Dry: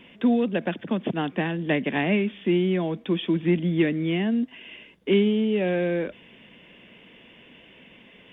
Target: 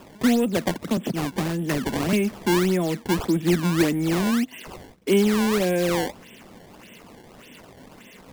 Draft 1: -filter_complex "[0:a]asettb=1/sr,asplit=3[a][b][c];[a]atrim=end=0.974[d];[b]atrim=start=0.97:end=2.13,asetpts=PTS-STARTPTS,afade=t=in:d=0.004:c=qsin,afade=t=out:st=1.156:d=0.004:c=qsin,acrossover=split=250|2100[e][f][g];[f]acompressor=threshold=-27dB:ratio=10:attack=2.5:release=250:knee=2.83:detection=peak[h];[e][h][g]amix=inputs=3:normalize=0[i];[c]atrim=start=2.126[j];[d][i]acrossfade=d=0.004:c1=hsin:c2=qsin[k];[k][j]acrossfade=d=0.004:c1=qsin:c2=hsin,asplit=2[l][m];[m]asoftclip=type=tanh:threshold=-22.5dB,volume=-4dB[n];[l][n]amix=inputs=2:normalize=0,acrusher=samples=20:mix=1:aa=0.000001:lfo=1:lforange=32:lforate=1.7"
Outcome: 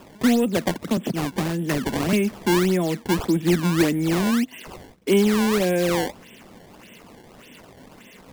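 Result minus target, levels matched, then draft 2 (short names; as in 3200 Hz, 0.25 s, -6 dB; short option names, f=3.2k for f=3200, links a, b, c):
soft clip: distortion -4 dB
-filter_complex "[0:a]asettb=1/sr,asplit=3[a][b][c];[a]atrim=end=0.974[d];[b]atrim=start=0.97:end=2.13,asetpts=PTS-STARTPTS,afade=t=in:d=0.004:c=qsin,afade=t=out:st=1.156:d=0.004:c=qsin,acrossover=split=250|2100[e][f][g];[f]acompressor=threshold=-27dB:ratio=10:attack=2.5:release=250:knee=2.83:detection=peak[h];[e][h][g]amix=inputs=3:normalize=0[i];[c]atrim=start=2.126[j];[d][i]acrossfade=d=0.004:c1=hsin:c2=qsin[k];[k][j]acrossfade=d=0.004:c1=qsin:c2=hsin,asplit=2[l][m];[m]asoftclip=type=tanh:threshold=-29dB,volume=-4dB[n];[l][n]amix=inputs=2:normalize=0,acrusher=samples=20:mix=1:aa=0.000001:lfo=1:lforange=32:lforate=1.7"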